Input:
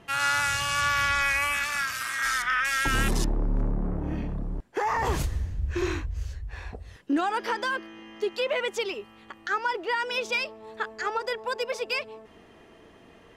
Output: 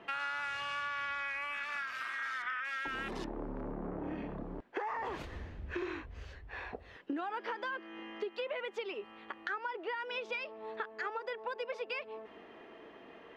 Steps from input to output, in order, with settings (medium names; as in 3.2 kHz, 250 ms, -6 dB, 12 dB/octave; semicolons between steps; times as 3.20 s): three-band isolator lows -17 dB, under 230 Hz, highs -23 dB, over 3.7 kHz; compression 6:1, threshold -37 dBFS, peak gain reduction 14 dB; trim +1 dB